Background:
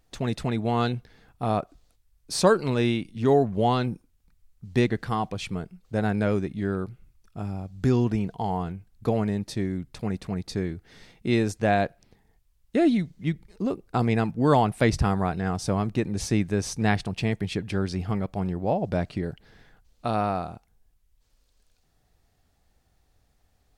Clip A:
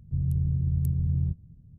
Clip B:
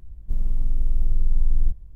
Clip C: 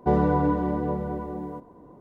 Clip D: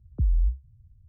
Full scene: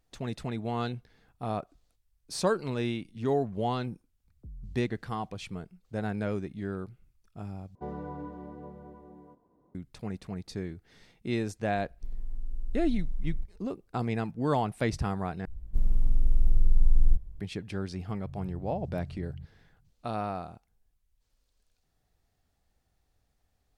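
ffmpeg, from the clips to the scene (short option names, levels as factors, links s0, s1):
-filter_complex "[2:a]asplit=2[s0][s1];[0:a]volume=0.422[s2];[4:a]asoftclip=type=tanh:threshold=0.075[s3];[s0]equalizer=f=130:w=1.7:g=-7[s4];[s2]asplit=3[s5][s6][s7];[s5]atrim=end=7.754[s8];[3:a]atrim=end=2,asetpts=PTS-STARTPTS,volume=0.133[s9];[s6]atrim=start=9.746:end=15.454[s10];[s1]atrim=end=1.95,asetpts=PTS-STARTPTS,volume=0.841[s11];[s7]atrim=start=17.396[s12];[s3]atrim=end=1.08,asetpts=PTS-STARTPTS,volume=0.133,afade=t=in:d=0.004:c=hsin,afade=t=out:st=1.076:d=0.004:c=hsin,adelay=187425S[s13];[s4]atrim=end=1.95,asetpts=PTS-STARTPTS,volume=0.211,afade=t=in:d=0.004:c=hsin,afade=t=out:st=1.946:d=0.004:c=hsin,adelay=11730[s14];[1:a]atrim=end=1.78,asetpts=PTS-STARTPTS,volume=0.158,afade=t=in:d=0.004:c=hsin,afade=t=out:st=1.776:d=0.004:c=hsin,adelay=18130[s15];[s8][s9]acrossfade=d=0.004:c1=hsin:c2=hsin[s16];[s16][s10]acrossfade=d=0.004:c1=hsin:c2=hsin[s17];[s17][s11]acrossfade=d=0.004:c1=hsin:c2=hsin[s18];[s18][s12]acrossfade=d=0.004:c1=hsin:c2=hsin[s19];[s19][s13][s14][s15]amix=inputs=4:normalize=0"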